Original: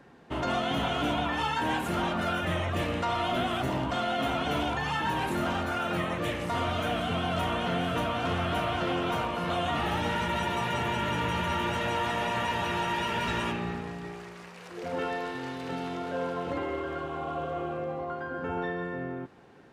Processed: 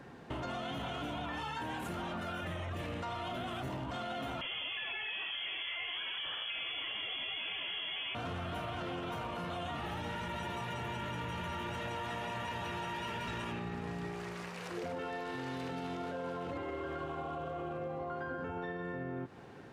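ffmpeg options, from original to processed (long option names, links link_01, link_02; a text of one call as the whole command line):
ffmpeg -i in.wav -filter_complex "[0:a]asettb=1/sr,asplit=3[link_01][link_02][link_03];[link_01]atrim=end=4.414[link_04];[link_02]atrim=start=4.41:end=8.15,asetpts=PTS-STARTPTS,afade=type=in:duration=0.004:curve=qsin,afade=type=out:start_time=3.736:duration=0.004:curve=qsin,lowpass=frequency=3000:width_type=q:width=0.5098,lowpass=frequency=3000:width_type=q:width=0.6013,lowpass=frequency=3000:width_type=q:width=0.9,lowpass=frequency=3000:width_type=q:width=2.563,afreqshift=-3500[link_05];[link_03]atrim=start=8.146[link_06];[link_04][link_05]acrossfade=duration=0.004:curve1=hsin:curve2=qsin[link_07];[link_07][link_06]acrossfade=duration=0.004:curve1=qsin:curve2=hsin,equalizer=frequency=110:width_type=o:width=0.72:gain=4.5,alimiter=level_in=4.5dB:limit=-24dB:level=0:latency=1,volume=-4.5dB,acompressor=threshold=-39dB:ratio=6,volume=2.5dB" out.wav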